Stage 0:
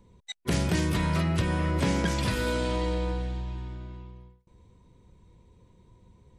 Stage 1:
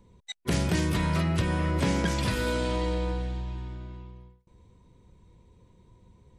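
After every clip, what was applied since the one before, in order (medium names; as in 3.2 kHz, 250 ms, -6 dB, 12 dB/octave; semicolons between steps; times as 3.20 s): no audible change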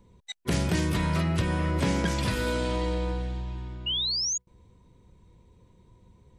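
painted sound rise, 3.86–4.38 s, 2.8–6.9 kHz -28 dBFS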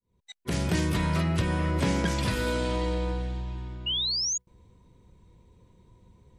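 fade-in on the opening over 0.73 s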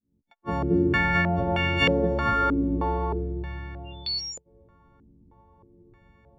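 partials quantised in pitch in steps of 4 st; step-sequenced low-pass 3.2 Hz 270–2600 Hz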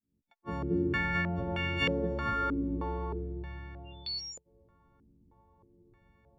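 dynamic bell 740 Hz, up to -8 dB, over -46 dBFS, Q 3.4; trim -7.5 dB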